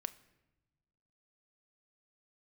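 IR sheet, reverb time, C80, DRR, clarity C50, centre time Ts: 1.1 s, 20.0 dB, 12.5 dB, 18.0 dB, 3 ms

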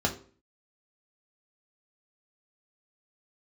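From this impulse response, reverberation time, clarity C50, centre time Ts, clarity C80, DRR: 0.45 s, 12.0 dB, 12 ms, 16.0 dB, 0.0 dB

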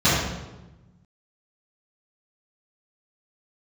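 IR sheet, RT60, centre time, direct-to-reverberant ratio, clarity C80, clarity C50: 1.1 s, 77 ms, -14.0 dB, 2.0 dB, -0.5 dB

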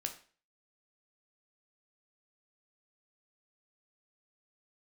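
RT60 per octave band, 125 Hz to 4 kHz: 0.40 s, 0.40 s, 0.40 s, 0.40 s, 0.40 s, 0.40 s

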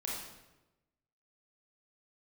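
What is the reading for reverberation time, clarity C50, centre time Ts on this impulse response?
1.0 s, 0.0 dB, 66 ms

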